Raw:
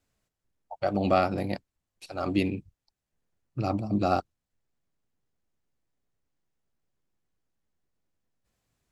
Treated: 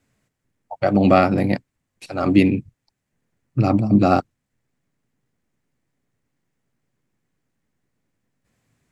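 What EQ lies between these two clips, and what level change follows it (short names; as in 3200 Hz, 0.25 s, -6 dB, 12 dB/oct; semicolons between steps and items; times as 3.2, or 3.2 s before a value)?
ten-band EQ 125 Hz +10 dB, 250 Hz +9 dB, 500 Hz +4 dB, 1000 Hz +3 dB, 2000 Hz +9 dB, 8000 Hz +5 dB; +2.0 dB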